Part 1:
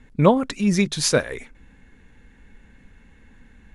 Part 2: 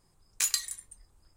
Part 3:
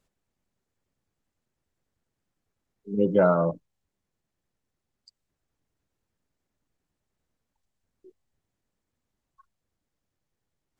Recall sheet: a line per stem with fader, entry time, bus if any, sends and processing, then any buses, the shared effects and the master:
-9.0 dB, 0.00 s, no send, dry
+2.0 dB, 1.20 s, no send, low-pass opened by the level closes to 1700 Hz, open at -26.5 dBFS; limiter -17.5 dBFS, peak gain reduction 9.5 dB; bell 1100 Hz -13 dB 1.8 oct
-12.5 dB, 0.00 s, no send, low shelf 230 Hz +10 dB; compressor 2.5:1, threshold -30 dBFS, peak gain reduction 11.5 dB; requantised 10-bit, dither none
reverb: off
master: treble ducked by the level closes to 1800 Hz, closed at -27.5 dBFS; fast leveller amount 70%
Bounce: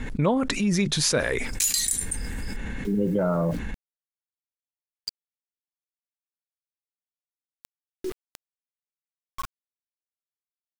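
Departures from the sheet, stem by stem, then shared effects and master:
stem 2: missing low-pass opened by the level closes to 1700 Hz, open at -26.5 dBFS; stem 3 -12.5 dB -> -4.0 dB; master: missing treble ducked by the level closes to 1800 Hz, closed at -27.5 dBFS

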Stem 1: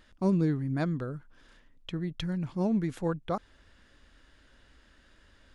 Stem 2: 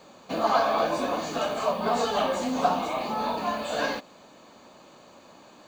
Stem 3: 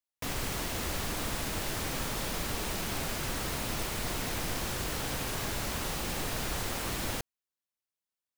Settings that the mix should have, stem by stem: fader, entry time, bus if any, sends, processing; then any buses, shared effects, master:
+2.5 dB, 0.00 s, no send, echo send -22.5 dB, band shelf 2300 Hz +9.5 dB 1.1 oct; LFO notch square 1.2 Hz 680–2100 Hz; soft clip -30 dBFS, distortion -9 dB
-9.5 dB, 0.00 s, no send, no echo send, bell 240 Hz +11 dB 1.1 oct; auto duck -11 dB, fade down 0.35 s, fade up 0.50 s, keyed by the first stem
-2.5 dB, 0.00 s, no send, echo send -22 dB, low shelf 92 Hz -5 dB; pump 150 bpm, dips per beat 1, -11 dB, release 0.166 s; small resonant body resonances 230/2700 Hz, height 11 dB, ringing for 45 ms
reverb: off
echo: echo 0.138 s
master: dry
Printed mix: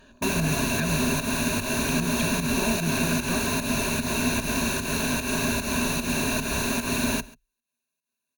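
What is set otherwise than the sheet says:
stem 3 -2.5 dB -> +5.5 dB; master: extra ripple EQ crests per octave 1.5, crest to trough 13 dB

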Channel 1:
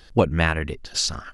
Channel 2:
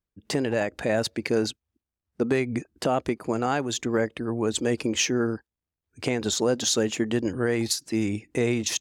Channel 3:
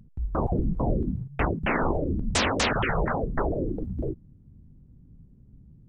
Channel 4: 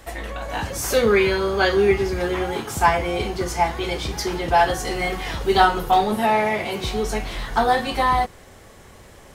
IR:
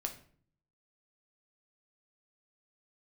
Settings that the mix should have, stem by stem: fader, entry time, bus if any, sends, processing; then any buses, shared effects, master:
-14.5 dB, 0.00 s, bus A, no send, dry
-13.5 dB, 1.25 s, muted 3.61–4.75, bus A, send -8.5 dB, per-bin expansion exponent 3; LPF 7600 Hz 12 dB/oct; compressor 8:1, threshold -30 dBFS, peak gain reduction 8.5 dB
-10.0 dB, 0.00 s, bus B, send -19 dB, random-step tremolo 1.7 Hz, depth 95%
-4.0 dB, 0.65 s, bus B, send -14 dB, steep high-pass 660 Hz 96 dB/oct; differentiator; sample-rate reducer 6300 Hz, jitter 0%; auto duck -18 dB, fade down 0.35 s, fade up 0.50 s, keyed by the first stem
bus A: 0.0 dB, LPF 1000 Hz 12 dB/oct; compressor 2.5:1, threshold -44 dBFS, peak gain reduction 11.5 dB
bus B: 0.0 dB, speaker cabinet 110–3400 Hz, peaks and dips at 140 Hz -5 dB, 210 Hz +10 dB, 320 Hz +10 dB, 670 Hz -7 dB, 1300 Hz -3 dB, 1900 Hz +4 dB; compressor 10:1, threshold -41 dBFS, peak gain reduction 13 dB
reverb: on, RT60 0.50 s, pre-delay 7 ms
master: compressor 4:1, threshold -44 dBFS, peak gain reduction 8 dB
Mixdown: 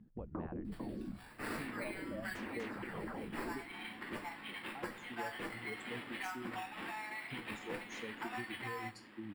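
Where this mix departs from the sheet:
stem 1 -14.5 dB -> -25.5 dB; master: missing compressor 4:1, threshold -44 dBFS, peak gain reduction 8 dB

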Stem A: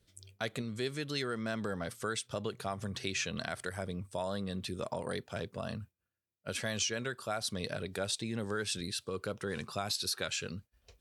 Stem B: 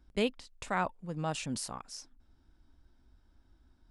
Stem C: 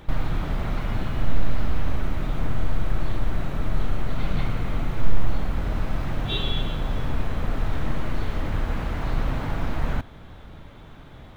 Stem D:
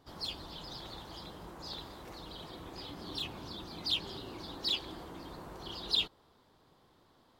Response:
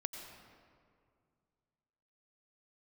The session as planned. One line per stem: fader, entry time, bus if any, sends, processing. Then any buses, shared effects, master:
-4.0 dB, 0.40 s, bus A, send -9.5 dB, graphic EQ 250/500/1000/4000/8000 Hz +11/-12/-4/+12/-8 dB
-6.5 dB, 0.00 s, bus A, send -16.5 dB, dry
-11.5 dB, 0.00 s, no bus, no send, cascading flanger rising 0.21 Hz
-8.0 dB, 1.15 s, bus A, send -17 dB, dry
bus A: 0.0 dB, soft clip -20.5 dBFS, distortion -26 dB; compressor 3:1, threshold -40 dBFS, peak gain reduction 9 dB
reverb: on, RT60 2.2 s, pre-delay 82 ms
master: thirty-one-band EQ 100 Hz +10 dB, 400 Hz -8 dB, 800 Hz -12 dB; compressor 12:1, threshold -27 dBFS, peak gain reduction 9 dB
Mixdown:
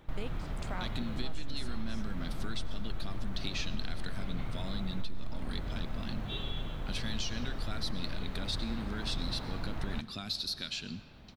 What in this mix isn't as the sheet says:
stem C: missing cascading flanger rising 0.21 Hz; stem D: muted; master: missing thirty-one-band EQ 100 Hz +10 dB, 400 Hz -8 dB, 800 Hz -12 dB

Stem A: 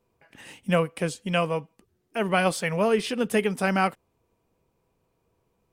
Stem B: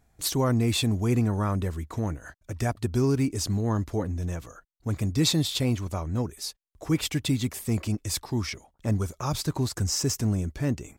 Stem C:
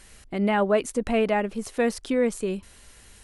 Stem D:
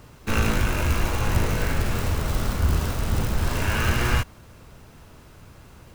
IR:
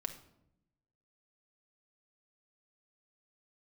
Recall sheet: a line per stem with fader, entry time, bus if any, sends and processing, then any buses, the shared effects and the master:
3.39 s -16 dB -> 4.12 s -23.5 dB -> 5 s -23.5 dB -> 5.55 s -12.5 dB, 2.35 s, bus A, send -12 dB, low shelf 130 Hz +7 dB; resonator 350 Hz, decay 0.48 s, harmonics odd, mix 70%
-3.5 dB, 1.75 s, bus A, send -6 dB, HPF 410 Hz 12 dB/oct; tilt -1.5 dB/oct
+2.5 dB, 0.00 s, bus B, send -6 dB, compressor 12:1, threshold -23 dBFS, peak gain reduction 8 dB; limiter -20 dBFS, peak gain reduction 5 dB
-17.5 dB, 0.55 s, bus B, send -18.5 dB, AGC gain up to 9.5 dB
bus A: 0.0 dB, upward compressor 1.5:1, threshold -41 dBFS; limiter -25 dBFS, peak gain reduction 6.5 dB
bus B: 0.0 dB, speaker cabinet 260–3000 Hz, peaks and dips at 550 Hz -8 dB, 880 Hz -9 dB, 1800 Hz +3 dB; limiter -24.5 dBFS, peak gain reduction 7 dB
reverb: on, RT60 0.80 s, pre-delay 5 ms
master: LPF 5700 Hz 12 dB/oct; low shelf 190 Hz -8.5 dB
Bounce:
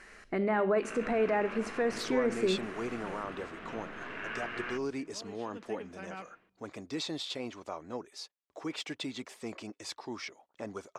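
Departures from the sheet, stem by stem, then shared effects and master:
stem B: send off; stem C: missing compressor 12:1, threshold -23 dBFS, peak gain reduction 8 dB

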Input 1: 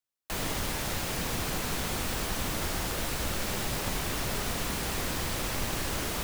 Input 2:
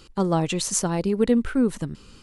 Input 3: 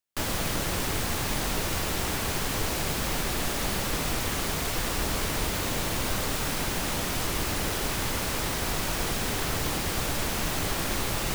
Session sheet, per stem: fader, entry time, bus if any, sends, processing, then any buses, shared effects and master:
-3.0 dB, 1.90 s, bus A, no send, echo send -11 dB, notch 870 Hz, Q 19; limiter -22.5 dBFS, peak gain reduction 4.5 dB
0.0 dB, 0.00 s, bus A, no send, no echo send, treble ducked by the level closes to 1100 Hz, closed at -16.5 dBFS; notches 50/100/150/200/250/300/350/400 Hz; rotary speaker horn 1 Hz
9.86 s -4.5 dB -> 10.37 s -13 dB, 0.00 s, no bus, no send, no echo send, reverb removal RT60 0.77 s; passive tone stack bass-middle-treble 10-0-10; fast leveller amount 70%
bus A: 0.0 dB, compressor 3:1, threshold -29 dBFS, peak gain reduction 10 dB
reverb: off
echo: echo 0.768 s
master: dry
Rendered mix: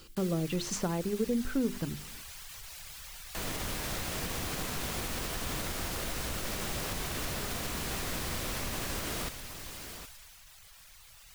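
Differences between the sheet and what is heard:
stem 1: entry 1.90 s -> 3.05 s; stem 3 -4.5 dB -> -13.5 dB

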